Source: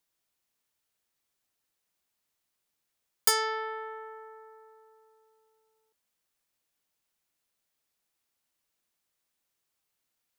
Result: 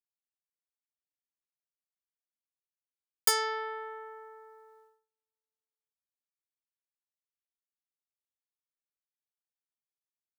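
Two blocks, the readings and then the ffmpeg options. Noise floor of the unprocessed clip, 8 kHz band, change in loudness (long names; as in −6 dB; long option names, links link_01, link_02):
−82 dBFS, −1.5 dB, −1.5 dB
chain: -af "agate=range=-32dB:threshold=-57dB:ratio=16:detection=peak,volume=-1.5dB"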